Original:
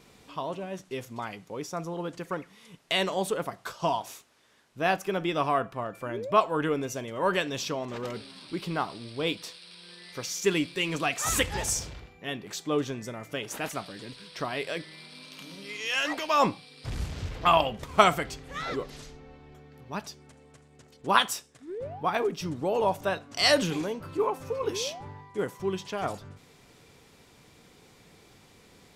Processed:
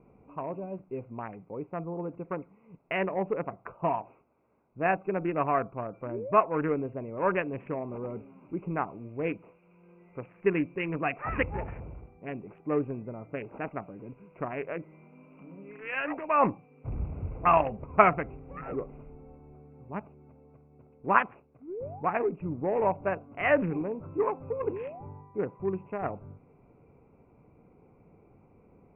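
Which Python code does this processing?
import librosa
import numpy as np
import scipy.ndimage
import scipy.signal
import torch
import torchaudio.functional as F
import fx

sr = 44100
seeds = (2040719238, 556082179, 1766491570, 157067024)

y = fx.wiener(x, sr, points=25)
y = scipy.signal.sosfilt(scipy.signal.butter(16, 2600.0, 'lowpass', fs=sr, output='sos'), y)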